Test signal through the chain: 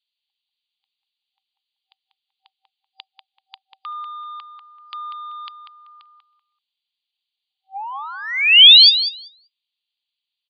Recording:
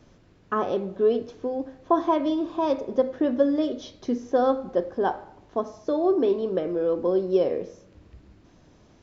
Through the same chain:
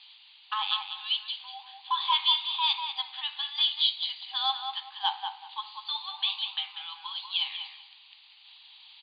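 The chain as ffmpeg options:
-filter_complex "[0:a]afftfilt=real='re*between(b*sr/4096,770,4800)':imag='im*between(b*sr/4096,770,4800)':win_size=4096:overlap=0.75,acontrast=74,highshelf=f=2.2k:t=q:w=3:g=13,asplit=2[a][b];[b]adelay=192,lowpass=f=2.4k:p=1,volume=-5dB,asplit=2[c][d];[d]adelay=192,lowpass=f=2.4k:p=1,volume=0.25,asplit=2[e][f];[f]adelay=192,lowpass=f=2.4k:p=1,volume=0.25[g];[c][e][g]amix=inputs=3:normalize=0[h];[a][h]amix=inputs=2:normalize=0,volume=-6dB"

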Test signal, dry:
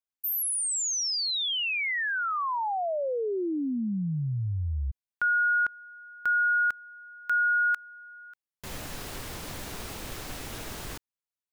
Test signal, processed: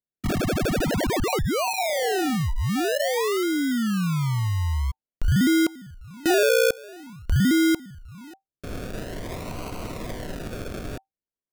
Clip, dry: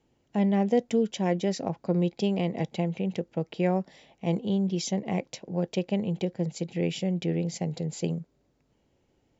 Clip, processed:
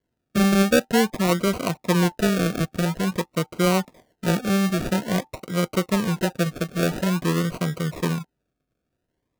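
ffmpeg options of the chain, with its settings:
-af "agate=range=-14dB:threshold=-55dB:ratio=16:release=21:detection=rms,acrusher=samples=35:mix=1:aa=0.000001:lfo=1:lforange=21:lforate=0.49,asuperstop=centerf=830:order=20:qfactor=7.9,volume=5.5dB"

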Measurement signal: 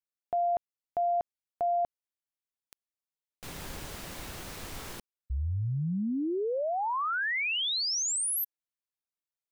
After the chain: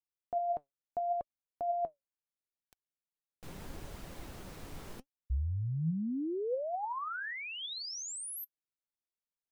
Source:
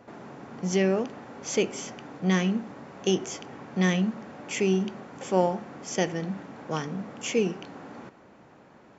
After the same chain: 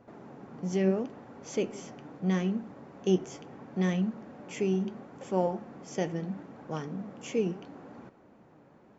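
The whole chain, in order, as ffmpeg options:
-af "tiltshelf=f=970:g=4.5,flanger=delay=0.6:depth=6.8:regen=72:speed=0.75:shape=triangular,volume=-2.5dB"

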